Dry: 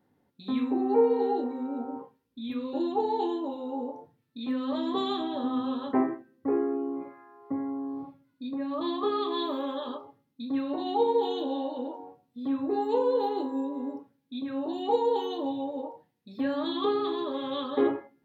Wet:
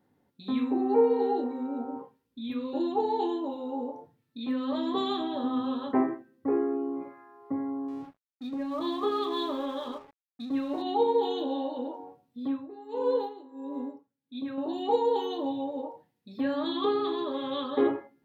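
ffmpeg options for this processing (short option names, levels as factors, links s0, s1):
-filter_complex "[0:a]asettb=1/sr,asplit=3[s0][s1][s2];[s0]atrim=end=7.884[s3];[s1]atrim=start=7.88:end=10.82,asetpts=PTS-STARTPTS,afade=t=in:d=0.004:c=qsin,afade=t=out:st=2.936:d=0.004:c=qsin,aeval=exprs='sgn(val(0))*max(abs(val(0))-0.00211,0)':c=same[s4];[s2]atrim=start=10.816[s5];[s3][s4]acrossfade=d=0.004:c1=hsin:c2=qsin[s6];[s6][s5]acrossfade=d=0.004:c1=qsin:c2=hsin,asettb=1/sr,asplit=3[s7][s8][s9];[s7]atrim=end=12.454[s10];[s8]atrim=start=12.45:end=14.58,asetpts=PTS-STARTPTS,afade=t=in:d=0.004:c=qsin,afade=t=out:st=2.126:d=0.004:c=qsin,aeval=exprs='val(0)*pow(10,-18*(0.5-0.5*cos(2*PI*1.5*n/s))/20)':c=same[s11];[s9]atrim=start=14.576[s12];[s10][s11]acrossfade=d=0.004:c1=hsin:c2=qsin[s13];[s13][s12]acrossfade=d=0.004:c1=qsin:c2=hsin"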